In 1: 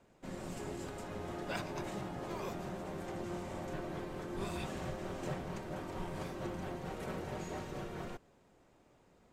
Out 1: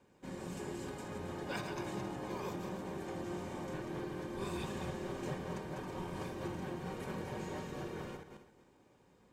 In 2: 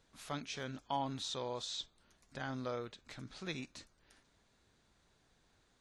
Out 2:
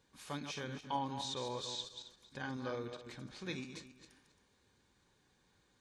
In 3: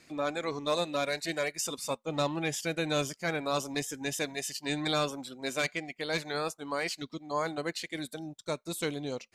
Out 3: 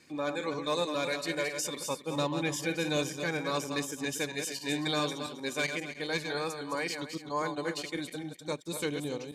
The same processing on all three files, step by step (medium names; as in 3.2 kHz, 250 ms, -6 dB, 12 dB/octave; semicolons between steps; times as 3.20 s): backward echo that repeats 135 ms, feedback 44%, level -7 dB; comb of notches 670 Hz